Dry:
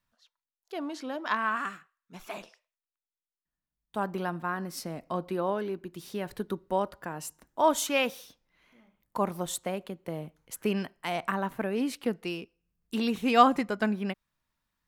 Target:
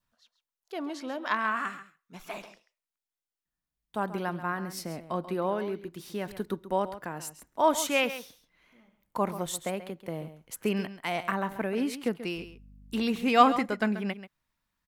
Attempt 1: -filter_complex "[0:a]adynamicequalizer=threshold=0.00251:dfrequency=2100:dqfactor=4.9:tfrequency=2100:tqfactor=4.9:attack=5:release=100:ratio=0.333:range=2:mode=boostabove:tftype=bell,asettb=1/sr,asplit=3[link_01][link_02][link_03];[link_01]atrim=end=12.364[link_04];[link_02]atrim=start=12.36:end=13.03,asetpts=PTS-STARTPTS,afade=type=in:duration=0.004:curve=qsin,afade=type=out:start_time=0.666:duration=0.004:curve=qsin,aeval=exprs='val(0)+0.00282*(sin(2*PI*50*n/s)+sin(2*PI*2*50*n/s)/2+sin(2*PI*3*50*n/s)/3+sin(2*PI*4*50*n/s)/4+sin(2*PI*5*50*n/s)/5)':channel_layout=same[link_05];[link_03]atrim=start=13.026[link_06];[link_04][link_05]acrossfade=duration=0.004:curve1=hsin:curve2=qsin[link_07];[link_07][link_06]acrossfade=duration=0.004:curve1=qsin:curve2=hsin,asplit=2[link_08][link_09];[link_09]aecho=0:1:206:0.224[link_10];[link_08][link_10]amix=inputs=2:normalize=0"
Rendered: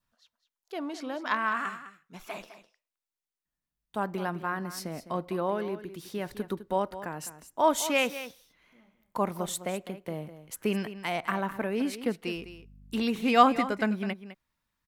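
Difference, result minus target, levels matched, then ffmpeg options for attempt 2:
echo 71 ms late
-filter_complex "[0:a]adynamicequalizer=threshold=0.00251:dfrequency=2100:dqfactor=4.9:tfrequency=2100:tqfactor=4.9:attack=5:release=100:ratio=0.333:range=2:mode=boostabove:tftype=bell,asettb=1/sr,asplit=3[link_01][link_02][link_03];[link_01]atrim=end=12.364[link_04];[link_02]atrim=start=12.36:end=13.03,asetpts=PTS-STARTPTS,afade=type=in:duration=0.004:curve=qsin,afade=type=out:start_time=0.666:duration=0.004:curve=qsin,aeval=exprs='val(0)+0.00282*(sin(2*PI*50*n/s)+sin(2*PI*2*50*n/s)/2+sin(2*PI*3*50*n/s)/3+sin(2*PI*4*50*n/s)/4+sin(2*PI*5*50*n/s)/5)':channel_layout=same[link_05];[link_03]atrim=start=13.026[link_06];[link_04][link_05]acrossfade=duration=0.004:curve1=hsin:curve2=qsin[link_07];[link_07][link_06]acrossfade=duration=0.004:curve1=qsin:curve2=hsin,asplit=2[link_08][link_09];[link_09]aecho=0:1:135:0.224[link_10];[link_08][link_10]amix=inputs=2:normalize=0"

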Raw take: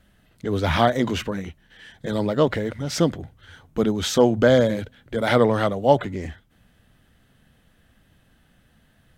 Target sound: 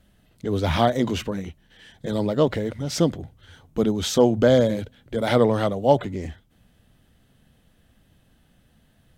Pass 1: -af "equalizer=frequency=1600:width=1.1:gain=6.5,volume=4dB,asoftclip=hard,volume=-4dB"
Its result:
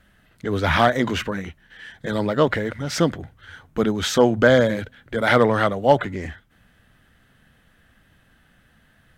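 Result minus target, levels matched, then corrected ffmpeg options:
2,000 Hz band +8.5 dB
-af "equalizer=frequency=1600:width=1.1:gain=-5.5,volume=4dB,asoftclip=hard,volume=-4dB"

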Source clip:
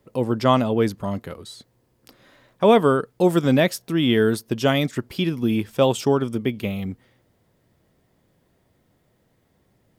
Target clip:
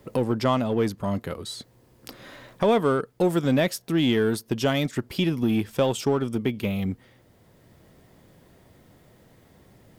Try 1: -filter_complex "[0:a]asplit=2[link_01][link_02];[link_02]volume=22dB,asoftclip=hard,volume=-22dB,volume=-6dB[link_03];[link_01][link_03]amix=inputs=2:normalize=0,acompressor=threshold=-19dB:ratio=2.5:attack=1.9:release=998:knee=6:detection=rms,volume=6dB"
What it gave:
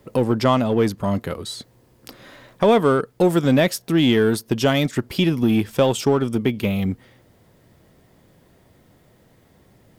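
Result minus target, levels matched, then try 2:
downward compressor: peak gain reduction −5 dB
-filter_complex "[0:a]asplit=2[link_01][link_02];[link_02]volume=22dB,asoftclip=hard,volume=-22dB,volume=-6dB[link_03];[link_01][link_03]amix=inputs=2:normalize=0,acompressor=threshold=-27.5dB:ratio=2.5:attack=1.9:release=998:knee=6:detection=rms,volume=6dB"

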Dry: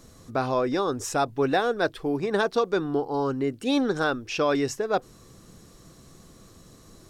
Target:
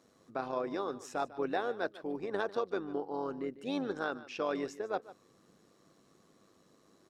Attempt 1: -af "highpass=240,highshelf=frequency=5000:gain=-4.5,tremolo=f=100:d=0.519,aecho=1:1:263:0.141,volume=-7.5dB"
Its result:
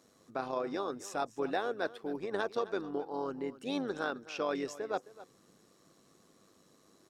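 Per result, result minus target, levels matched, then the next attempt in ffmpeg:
echo 115 ms late; 8,000 Hz band +4.5 dB
-af "highpass=240,highshelf=frequency=5000:gain=-4.5,tremolo=f=100:d=0.519,aecho=1:1:148:0.141,volume=-7.5dB"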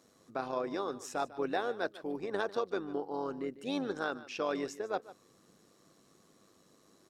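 8,000 Hz band +4.5 dB
-af "highpass=240,highshelf=frequency=5000:gain=-11.5,tremolo=f=100:d=0.519,aecho=1:1:148:0.141,volume=-7.5dB"

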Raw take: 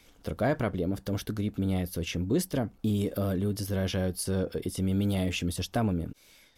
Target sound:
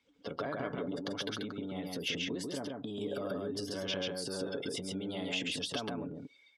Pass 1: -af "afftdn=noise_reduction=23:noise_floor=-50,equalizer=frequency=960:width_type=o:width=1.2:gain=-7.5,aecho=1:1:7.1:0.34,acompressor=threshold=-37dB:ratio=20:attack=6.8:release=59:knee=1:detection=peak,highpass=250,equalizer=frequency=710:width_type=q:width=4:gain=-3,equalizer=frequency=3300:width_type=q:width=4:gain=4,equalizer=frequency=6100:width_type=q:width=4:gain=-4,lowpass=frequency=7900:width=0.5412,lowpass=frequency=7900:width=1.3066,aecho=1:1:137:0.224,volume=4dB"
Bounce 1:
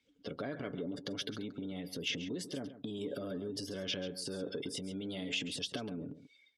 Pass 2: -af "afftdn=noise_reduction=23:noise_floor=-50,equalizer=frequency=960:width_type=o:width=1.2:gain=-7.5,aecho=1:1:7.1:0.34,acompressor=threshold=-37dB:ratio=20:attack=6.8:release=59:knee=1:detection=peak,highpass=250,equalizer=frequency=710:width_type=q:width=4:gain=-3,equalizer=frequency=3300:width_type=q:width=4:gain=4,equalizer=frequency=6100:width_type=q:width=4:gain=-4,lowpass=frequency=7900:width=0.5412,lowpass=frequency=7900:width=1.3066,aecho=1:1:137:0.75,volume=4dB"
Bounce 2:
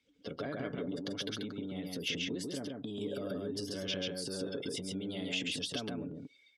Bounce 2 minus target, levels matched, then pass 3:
1,000 Hz band −5.5 dB
-af "afftdn=noise_reduction=23:noise_floor=-50,equalizer=frequency=960:width_type=o:width=1.2:gain=3.5,aecho=1:1:7.1:0.34,acompressor=threshold=-37dB:ratio=20:attack=6.8:release=59:knee=1:detection=peak,highpass=250,equalizer=frequency=710:width_type=q:width=4:gain=-3,equalizer=frequency=3300:width_type=q:width=4:gain=4,equalizer=frequency=6100:width_type=q:width=4:gain=-4,lowpass=frequency=7900:width=0.5412,lowpass=frequency=7900:width=1.3066,aecho=1:1:137:0.75,volume=4dB"

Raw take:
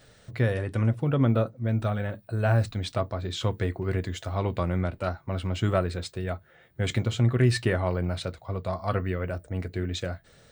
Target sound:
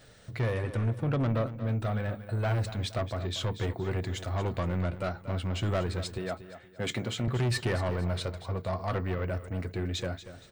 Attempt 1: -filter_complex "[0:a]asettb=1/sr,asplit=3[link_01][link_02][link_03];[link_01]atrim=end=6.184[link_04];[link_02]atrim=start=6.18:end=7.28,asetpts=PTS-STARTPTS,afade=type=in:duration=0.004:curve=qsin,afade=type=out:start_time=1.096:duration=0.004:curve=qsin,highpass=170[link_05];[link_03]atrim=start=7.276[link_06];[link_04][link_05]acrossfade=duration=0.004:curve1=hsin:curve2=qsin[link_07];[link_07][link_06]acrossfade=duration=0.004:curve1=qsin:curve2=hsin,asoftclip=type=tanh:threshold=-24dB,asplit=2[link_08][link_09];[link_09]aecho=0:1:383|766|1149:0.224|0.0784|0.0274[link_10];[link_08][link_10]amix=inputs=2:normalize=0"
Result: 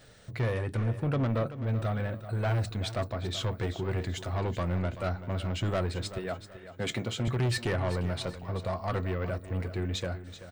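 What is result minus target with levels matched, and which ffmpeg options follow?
echo 149 ms late
-filter_complex "[0:a]asettb=1/sr,asplit=3[link_01][link_02][link_03];[link_01]atrim=end=6.184[link_04];[link_02]atrim=start=6.18:end=7.28,asetpts=PTS-STARTPTS,afade=type=in:duration=0.004:curve=qsin,afade=type=out:start_time=1.096:duration=0.004:curve=qsin,highpass=170[link_05];[link_03]atrim=start=7.276[link_06];[link_04][link_05]acrossfade=duration=0.004:curve1=hsin:curve2=qsin[link_07];[link_07][link_06]acrossfade=duration=0.004:curve1=qsin:curve2=hsin,asoftclip=type=tanh:threshold=-24dB,asplit=2[link_08][link_09];[link_09]aecho=0:1:234|468|702:0.224|0.0784|0.0274[link_10];[link_08][link_10]amix=inputs=2:normalize=0"

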